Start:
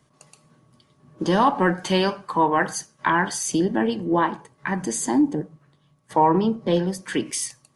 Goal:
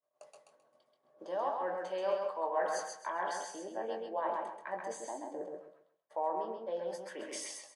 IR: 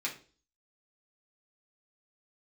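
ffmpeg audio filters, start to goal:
-filter_complex "[0:a]acrossover=split=9500[link_01][link_02];[link_02]acompressor=threshold=-50dB:ratio=4:attack=1:release=60[link_03];[link_01][link_03]amix=inputs=2:normalize=0,agate=range=-33dB:threshold=-49dB:ratio=3:detection=peak,highshelf=frequency=2200:gain=-9.5,areverse,acompressor=threshold=-34dB:ratio=6,areverse,highpass=frequency=600:width_type=q:width=4.9,asplit=2[link_04][link_05];[link_05]adelay=22,volume=-8dB[link_06];[link_04][link_06]amix=inputs=2:normalize=0,aecho=1:1:132|264|396|528:0.668|0.174|0.0452|0.0117,volume=-4.5dB"

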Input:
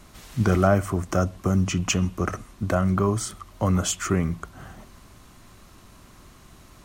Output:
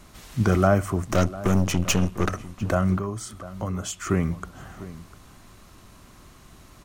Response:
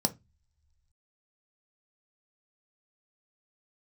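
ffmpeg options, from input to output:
-filter_complex "[0:a]asettb=1/sr,asplit=3[link_01][link_02][link_03];[link_01]atrim=end=1.044[link_04];[link_02]atrim=start=1.04:end=2.29,asetpts=PTS-STARTPTS,afade=type=in:duration=0.004:curve=qsin,afade=type=out:start_time=1.246:duration=0.004:curve=qsin,aeval=exprs='0.316*(cos(1*acos(clip(val(0)/0.316,-1,1)))-cos(1*PI/2))+0.0447*(cos(8*acos(clip(val(0)/0.316,-1,1)))-cos(8*PI/2))':channel_layout=same[link_05];[link_03]atrim=start=2.286[link_06];[link_04][link_05]acrossfade=duration=0.004:curve1=hsin:curve2=qsin[link_07];[link_07][link_06]acrossfade=duration=0.004:curve1=qsin:curve2=hsin,asettb=1/sr,asplit=3[link_08][link_09][link_10];[link_08]atrim=end=2.974[link_11];[link_09]atrim=start=2.97:end=4.07,asetpts=PTS-STARTPTS,afade=type=in:duration=0.004:curve=qsin,afade=type=out:start_time=1.096:duration=0.004:curve=qsin,acompressor=threshold=-40dB:ratio=1.5[link_12];[link_10]atrim=start=4.066[link_13];[link_11][link_12]acrossfade=duration=0.004:curve1=hsin:curve2=qsin[link_14];[link_14][link_13]acrossfade=duration=0.004:curve1=qsin:curve2=hsin,asplit=2[link_15][link_16];[link_16]adelay=699.7,volume=-16dB,highshelf=frequency=4000:gain=-15.7[link_17];[link_15][link_17]amix=inputs=2:normalize=0"

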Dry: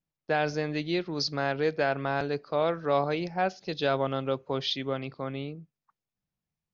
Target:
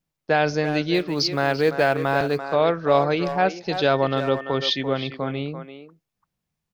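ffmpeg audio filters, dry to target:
ffmpeg -i in.wav -filter_complex "[0:a]asettb=1/sr,asplit=3[link_01][link_02][link_03];[link_01]atrim=end=0.944[link_04];[link_02]atrim=start=0.94:end=2.41,asetpts=PTS-STARTPTS,afade=type=in:duration=0.004:curve=qsin,afade=type=out:start_time=1.466:duration=0.004:curve=qsin,acrusher=bits=8:mode=log:mix=0:aa=0.000001[link_05];[link_03]atrim=start=2.406[link_06];[link_04][link_05]acrossfade=duration=0.004:curve1=hsin:curve2=qsin[link_07];[link_07][link_06]acrossfade=duration=0.004:curve1=qsin:curve2=hsin,asettb=1/sr,asplit=3[link_08][link_09][link_10];[link_08]atrim=end=3.914[link_11];[link_09]atrim=start=3.91:end=4.83,asetpts=PTS-STARTPTS,afade=type=in:duration=0.004:curve=qsin,afade=type=out:start_time=0.916:duration=0.004:curve=qsin,aeval=exprs='val(0)+0.00447*sin(2*PI*1800*n/s)':channel_layout=same[link_12];[link_10]atrim=start=4.826[link_13];[link_11][link_12]acrossfade=duration=0.004:curve1=hsin:curve2=qsin[link_14];[link_14][link_13]acrossfade=duration=0.004:curve1=qsin:curve2=hsin,asplit=2[link_15][link_16];[link_16]adelay=340,highpass=300,lowpass=3400,asoftclip=type=hard:threshold=-20.5dB,volume=-9dB[link_17];[link_15][link_17]amix=inputs=2:normalize=0,volume=7dB" out.wav

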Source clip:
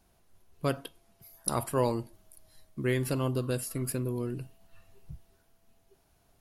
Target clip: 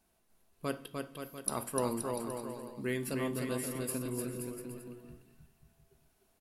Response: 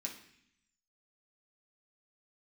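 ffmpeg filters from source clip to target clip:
-filter_complex "[0:a]aecho=1:1:300|525|693.8|820.3|915.2:0.631|0.398|0.251|0.158|0.1,asplit=2[link_01][link_02];[1:a]atrim=start_sample=2205,highshelf=frequency=9300:gain=5[link_03];[link_02][link_03]afir=irnorm=-1:irlink=0,volume=-5.5dB[link_04];[link_01][link_04]amix=inputs=2:normalize=0,volume=-7dB"

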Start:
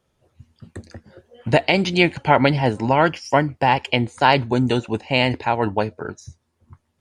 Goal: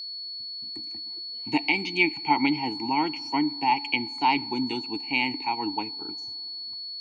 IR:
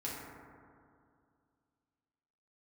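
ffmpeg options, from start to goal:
-filter_complex "[0:a]crystalizer=i=7:c=0,asplit=3[link_01][link_02][link_03];[link_01]bandpass=frequency=300:width_type=q:width=8,volume=0dB[link_04];[link_02]bandpass=frequency=870:width_type=q:width=8,volume=-6dB[link_05];[link_03]bandpass=frequency=2240:width_type=q:width=8,volume=-9dB[link_06];[link_04][link_05][link_06]amix=inputs=3:normalize=0,aeval=exprs='val(0)+0.02*sin(2*PI*4400*n/s)':channel_layout=same,asplit=2[link_07][link_08];[1:a]atrim=start_sample=2205,asetrate=43659,aresample=44100[link_09];[link_08][link_09]afir=irnorm=-1:irlink=0,volume=-23.5dB[link_10];[link_07][link_10]amix=inputs=2:normalize=0"

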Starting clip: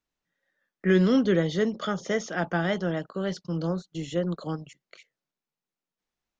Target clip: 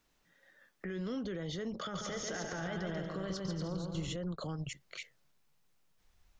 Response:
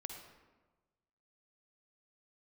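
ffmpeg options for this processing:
-filter_complex "[0:a]asubboost=boost=6.5:cutoff=97,acompressor=threshold=-41dB:ratio=6,alimiter=level_in=19.5dB:limit=-24dB:level=0:latency=1:release=68,volume=-19.5dB,asettb=1/sr,asplit=3[link_01][link_02][link_03];[link_01]atrim=end=1.804[link_04];[link_02]atrim=start=1.8:end=4.16,asetpts=PTS-STARTPTS,afade=type=in:duration=0.004:curve=qsin,afade=type=out:start_time=2.356:duration=0.004:curve=qsin,aecho=1:1:140|238|306.6|354.6|388.2:0.631|0.398|0.251|0.158|0.1,atrim=end_sample=104076[link_05];[link_03]atrim=start=4.156[link_06];[link_04][link_05]acrossfade=duration=0.004:curve1=hsin:curve2=qsin[link_07];[link_07][link_06]acrossfade=duration=0.004:curve1=qsin:curve2=hsin,volume=12dB"

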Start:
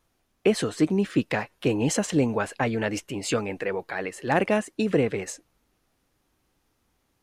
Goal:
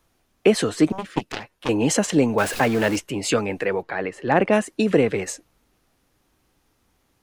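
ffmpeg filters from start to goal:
ffmpeg -i in.wav -filter_complex "[0:a]asettb=1/sr,asplit=3[link_01][link_02][link_03];[link_01]atrim=end=2.384[link_04];[link_02]atrim=start=2.38:end=2.96,asetpts=PTS-STARTPTS,afade=type=in:duration=0.004:curve=qsin,afade=type=out:start_time=0.576:duration=0.004:curve=qsin,aeval=exprs='val(0)+0.5*0.0282*sgn(val(0))':channel_layout=same[link_05];[link_03]atrim=start=2.956[link_06];[link_04][link_05]acrossfade=duration=0.004:curve1=hsin:curve2=qsin[link_07];[link_07][link_06]acrossfade=duration=0.004:curve1=qsin:curve2=hsin,asplit=3[link_08][link_09][link_10];[link_08]afade=type=out:start_time=3.81:duration=0.02[link_11];[link_09]aemphasis=mode=reproduction:type=75kf,afade=type=in:start_time=3.81:duration=0.02,afade=type=out:start_time=4.52:duration=0.02[link_12];[link_10]afade=type=in:start_time=4.52:duration=0.02[link_13];[link_11][link_12][link_13]amix=inputs=3:normalize=0,acrossover=split=160|4600[link_14][link_15][link_16];[link_14]asoftclip=type=hard:threshold=-39dB[link_17];[link_17][link_15][link_16]amix=inputs=3:normalize=0,asettb=1/sr,asplit=3[link_18][link_19][link_20];[link_18]atrim=end=0.924[link_21];[link_19]atrim=start=0.92:end=1.69,asetpts=PTS-STARTPTS,afade=type=in:duration=0.004:curve=qsin,afade=type=out:start_time=0.766:duration=0.004:curve=qsin,aeval=exprs='0.282*(cos(1*acos(clip(val(0)/0.282,-1,1)))-cos(1*PI/2))+0.112*(cos(3*acos(clip(val(0)/0.282,-1,1)))-cos(3*PI/2))+0.00891*(cos(7*acos(clip(val(0)/0.282,-1,1)))-cos(7*PI/2))':channel_layout=same[link_22];[link_20]atrim=start=1.686[link_23];[link_21][link_22]acrossfade=duration=0.004:curve1=hsin:curve2=qsin[link_24];[link_24][link_23]acrossfade=duration=0.004:curve1=qsin:curve2=hsin,volume=5dB" out.wav

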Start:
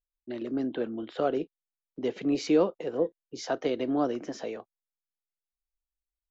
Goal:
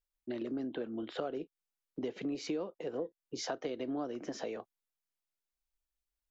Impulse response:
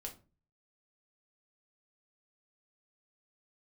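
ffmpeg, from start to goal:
-af "acompressor=threshold=-36dB:ratio=5,volume=1dB"

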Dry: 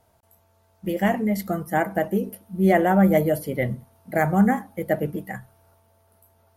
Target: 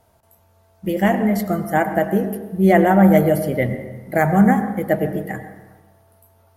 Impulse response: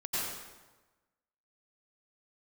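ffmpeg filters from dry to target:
-filter_complex "[0:a]asplit=2[link_01][link_02];[1:a]atrim=start_sample=2205,highshelf=frequency=3500:gain=-12[link_03];[link_02][link_03]afir=irnorm=-1:irlink=0,volume=-12.5dB[link_04];[link_01][link_04]amix=inputs=2:normalize=0,volume=3dB"

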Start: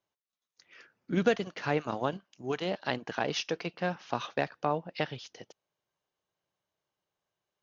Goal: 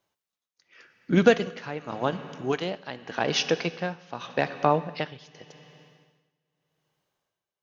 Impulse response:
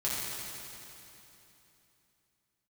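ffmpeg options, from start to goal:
-filter_complex "[0:a]asplit=2[link_01][link_02];[link_02]equalizer=frequency=2300:width_type=o:width=2.1:gain=3.5[link_03];[1:a]atrim=start_sample=2205,asetrate=57330,aresample=44100[link_04];[link_03][link_04]afir=irnorm=-1:irlink=0,volume=-18.5dB[link_05];[link_01][link_05]amix=inputs=2:normalize=0,tremolo=f=0.86:d=0.8,volume=7.5dB"

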